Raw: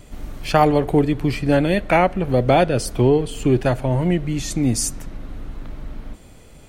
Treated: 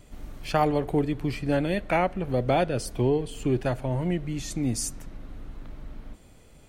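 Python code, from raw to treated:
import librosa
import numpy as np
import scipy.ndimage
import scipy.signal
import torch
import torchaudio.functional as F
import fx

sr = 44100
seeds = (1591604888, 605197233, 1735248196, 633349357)

y = fx.notch(x, sr, hz=1300.0, q=8.3, at=(2.88, 3.33))
y = F.gain(torch.from_numpy(y), -8.0).numpy()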